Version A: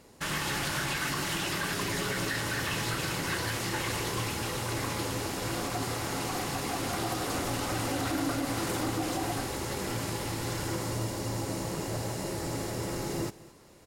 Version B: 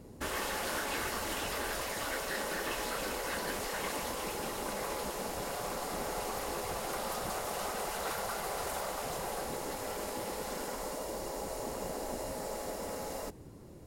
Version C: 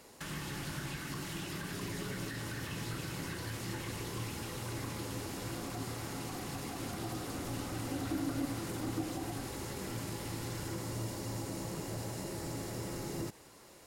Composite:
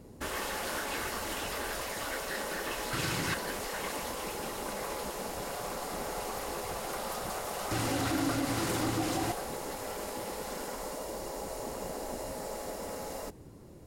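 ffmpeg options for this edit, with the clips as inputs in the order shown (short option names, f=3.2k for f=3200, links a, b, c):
-filter_complex "[0:a]asplit=2[a][b];[1:a]asplit=3[c][d][e];[c]atrim=end=2.932[f];[a]atrim=start=2.928:end=3.342[g];[d]atrim=start=3.338:end=7.712[h];[b]atrim=start=7.708:end=9.322[i];[e]atrim=start=9.318[j];[f][g]acrossfade=d=0.004:c1=hsin:c2=hsin[k];[k][h]acrossfade=d=0.004:c1=hsin:c2=hsin[l];[l][i]acrossfade=d=0.004:c1=hsin:c2=hsin[m];[m][j]acrossfade=d=0.004:c1=hsin:c2=hsin"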